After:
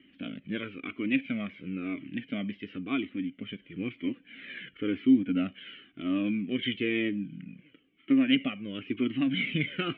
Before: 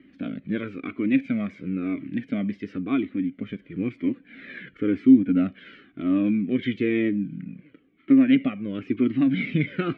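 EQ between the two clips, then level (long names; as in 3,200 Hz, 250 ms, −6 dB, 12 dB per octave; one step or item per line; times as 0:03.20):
low-pass with resonance 3,000 Hz, resonance Q 6
dynamic equaliser 900 Hz, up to +3 dB, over −34 dBFS, Q 0.82
−7.5 dB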